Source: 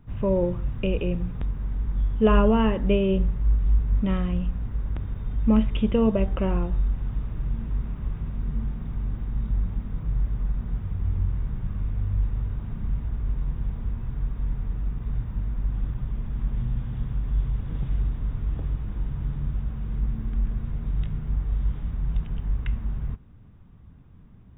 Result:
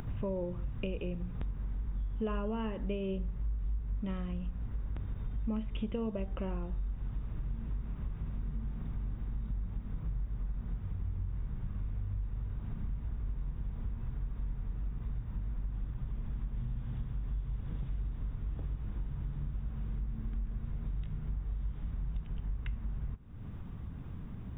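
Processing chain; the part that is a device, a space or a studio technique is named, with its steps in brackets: upward and downward compression (upward compressor, threshold -34 dBFS; compressor 4:1, threshold -36 dBFS, peak gain reduction 18.5 dB); gain +1 dB

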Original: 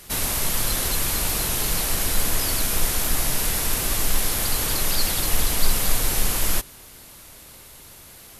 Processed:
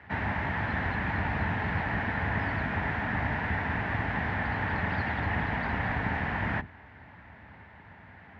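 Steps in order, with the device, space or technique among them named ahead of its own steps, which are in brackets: sub-octave bass pedal (octaver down 1 oct, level +2 dB; speaker cabinet 74–2000 Hz, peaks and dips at 140 Hz -5 dB, 360 Hz -9 dB, 510 Hz -8 dB, 860 Hz +6 dB, 1200 Hz -6 dB, 1800 Hz +9 dB)

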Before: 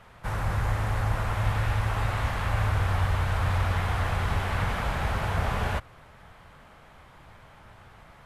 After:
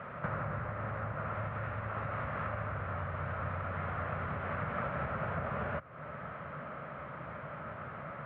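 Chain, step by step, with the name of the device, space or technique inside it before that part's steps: bass amplifier (compressor 5:1, threshold -41 dBFS, peak gain reduction 18.5 dB; speaker cabinet 82–2300 Hz, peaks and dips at 100 Hz -5 dB, 150 Hz +7 dB, 230 Hz +4 dB, 580 Hz +9 dB, 840 Hz -5 dB, 1300 Hz +8 dB); gain +6 dB

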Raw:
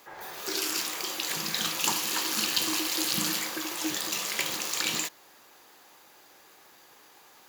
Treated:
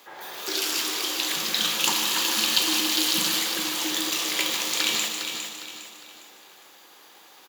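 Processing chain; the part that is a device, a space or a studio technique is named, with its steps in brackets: PA in a hall (HPF 190 Hz 12 dB/oct; bell 3400 Hz +6 dB 0.61 oct; echo 0.152 s -10 dB; reverb RT60 2.0 s, pre-delay 24 ms, DRR 8.5 dB); feedback echo 0.407 s, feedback 37%, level -7.5 dB; gain +1.5 dB

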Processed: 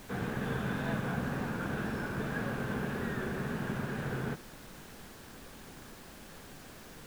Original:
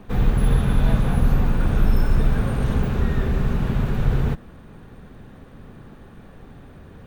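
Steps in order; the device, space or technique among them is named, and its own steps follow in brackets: horn gramophone (BPF 190–3800 Hz; bell 1600 Hz +9 dB 0.23 oct; wow and flutter; pink noise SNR 14 dB); gain -7.5 dB

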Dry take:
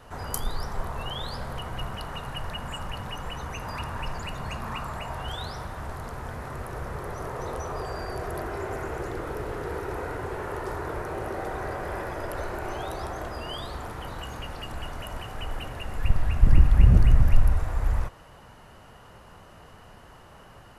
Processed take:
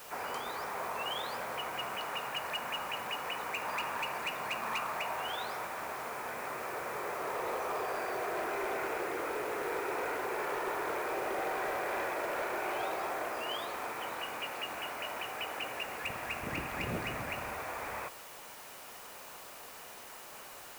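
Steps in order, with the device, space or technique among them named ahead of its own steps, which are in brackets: drive-through speaker (BPF 400–2800 Hz; bell 2400 Hz +11 dB 0.34 oct; hard clip -29.5 dBFS, distortion -19 dB; white noise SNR 14 dB)

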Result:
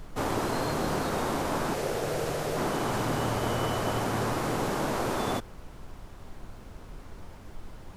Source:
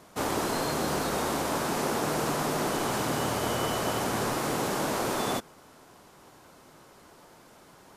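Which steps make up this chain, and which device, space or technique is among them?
car interior (bell 100 Hz +7.5 dB 0.6 oct; high shelf 3900 Hz -6.5 dB; brown noise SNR 11 dB); 1.74–2.57 ten-band EQ 250 Hz -10 dB, 500 Hz +6 dB, 1000 Hz -8 dB

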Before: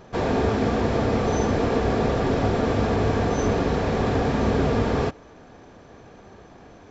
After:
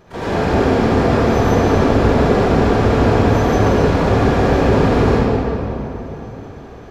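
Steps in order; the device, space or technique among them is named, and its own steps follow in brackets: shimmer-style reverb (harmoniser +12 st -12 dB; reverb RT60 3.3 s, pre-delay 58 ms, DRR -9.5 dB); gain -2.5 dB

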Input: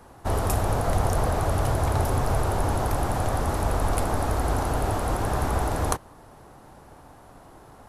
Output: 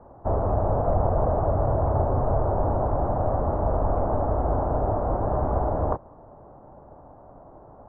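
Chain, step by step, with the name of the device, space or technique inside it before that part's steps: under water (LPF 1100 Hz 24 dB/oct; bell 600 Hz +7 dB 0.4 oct)

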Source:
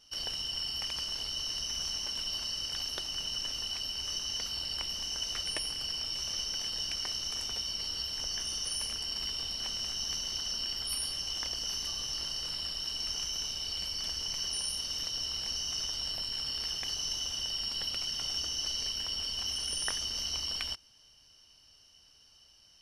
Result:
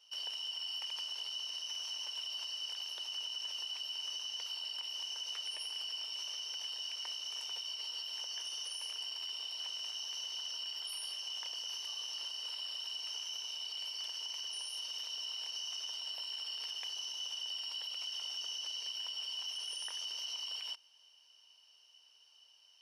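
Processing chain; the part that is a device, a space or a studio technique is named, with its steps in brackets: laptop speaker (HPF 420 Hz 24 dB/oct; bell 940 Hz +8 dB 0.25 oct; bell 2900 Hz +9.5 dB 0.47 oct; limiter -24.5 dBFS, peak gain reduction 11 dB); gain -8 dB

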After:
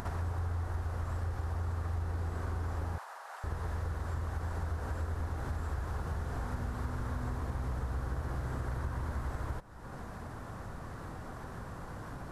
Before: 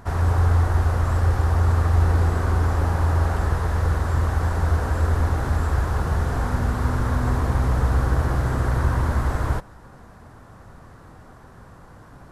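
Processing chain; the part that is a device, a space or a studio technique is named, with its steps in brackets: upward and downward compression (upward compressor, threshold -25 dBFS; compressor 4:1, threshold -26 dBFS, peak gain reduction 11 dB); 2.98–3.44 inverse Chebyshev high-pass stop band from 200 Hz, stop band 60 dB; gain -7.5 dB

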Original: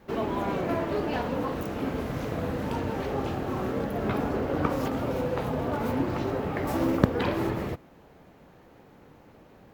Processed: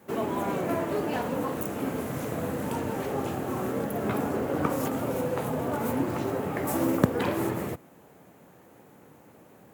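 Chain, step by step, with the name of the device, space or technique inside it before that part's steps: HPF 75 Hz; budget condenser microphone (HPF 92 Hz; resonant high shelf 6300 Hz +9.5 dB, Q 1.5)

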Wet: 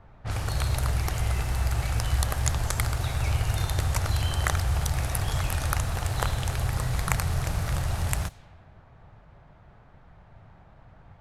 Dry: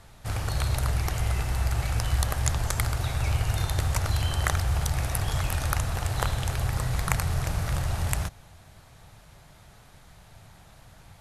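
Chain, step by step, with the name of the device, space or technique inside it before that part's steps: cassette deck with a dynamic noise filter (white noise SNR 32 dB; low-pass opened by the level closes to 1200 Hz, open at -25 dBFS)

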